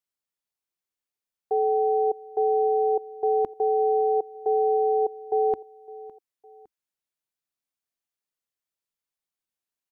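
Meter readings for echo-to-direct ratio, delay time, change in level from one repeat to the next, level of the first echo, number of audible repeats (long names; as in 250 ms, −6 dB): −19.5 dB, 559 ms, −6.5 dB, −20.5 dB, 2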